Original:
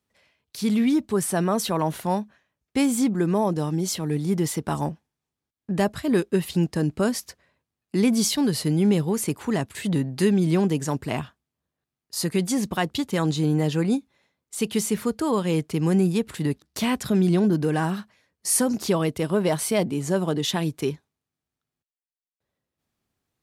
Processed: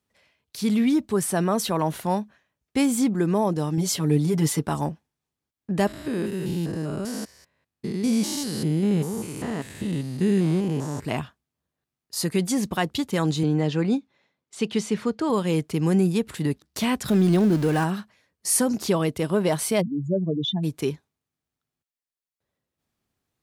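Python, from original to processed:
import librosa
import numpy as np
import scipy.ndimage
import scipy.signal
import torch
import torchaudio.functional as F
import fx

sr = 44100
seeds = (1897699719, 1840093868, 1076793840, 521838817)

y = fx.comb(x, sr, ms=7.0, depth=0.88, at=(3.77, 4.66))
y = fx.spec_steps(y, sr, hold_ms=200, at=(5.87, 11.05))
y = fx.bandpass_edges(y, sr, low_hz=110.0, high_hz=5300.0, at=(13.43, 15.3))
y = fx.zero_step(y, sr, step_db=-30.5, at=(17.08, 17.84))
y = fx.spec_expand(y, sr, power=3.2, at=(19.8, 20.63), fade=0.02)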